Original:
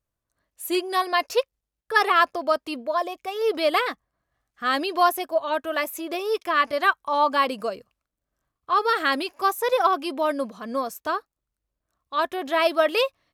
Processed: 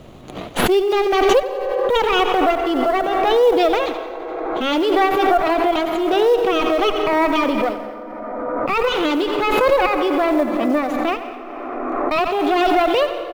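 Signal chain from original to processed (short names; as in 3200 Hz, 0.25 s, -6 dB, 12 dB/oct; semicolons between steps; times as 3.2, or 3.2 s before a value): minimum comb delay 0.31 ms; three-band isolator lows -19 dB, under 160 Hz, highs -14 dB, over 4600 Hz; in parallel at +1.5 dB: limiter -18.5 dBFS, peak gain reduction 10 dB; on the sum: tilt -2.5 dB/oct; notches 50/100/150 Hz; short-mantissa float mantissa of 4-bit; on a send: feedback echo 87 ms, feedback 57%, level -13.5 dB; on the sum: pitch shift +1.5 st; plate-style reverb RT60 2.7 s, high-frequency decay 0.35×, pre-delay 0.115 s, DRR 10.5 dB; backwards sustainer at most 22 dB/s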